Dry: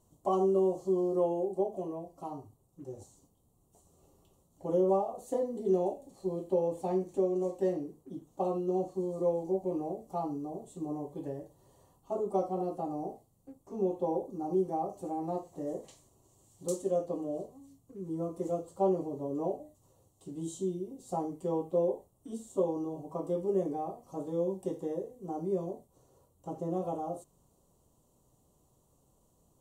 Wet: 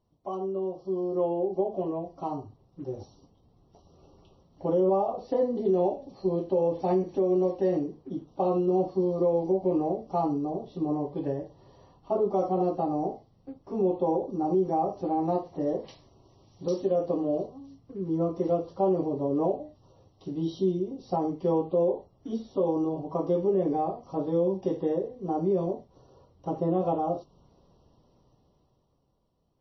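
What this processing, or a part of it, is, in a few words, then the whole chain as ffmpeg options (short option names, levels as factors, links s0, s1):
low-bitrate web radio: -af "dynaudnorm=f=130:g=21:m=5.01,alimiter=limit=0.266:level=0:latency=1:release=72,volume=0.562" -ar 22050 -c:a libmp3lame -b:a 24k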